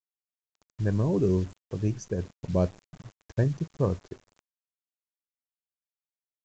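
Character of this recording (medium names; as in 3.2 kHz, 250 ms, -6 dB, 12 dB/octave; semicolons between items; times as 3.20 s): a quantiser's noise floor 8-bit, dither none; random-step tremolo 3.2 Hz; µ-law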